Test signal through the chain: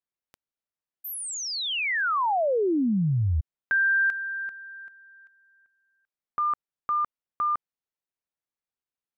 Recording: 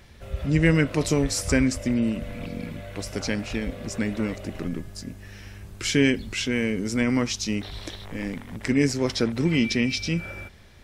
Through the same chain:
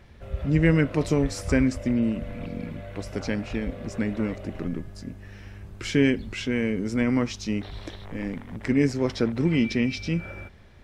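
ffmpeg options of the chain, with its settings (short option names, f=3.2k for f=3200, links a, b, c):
-af "highshelf=f=3.4k:g=-12"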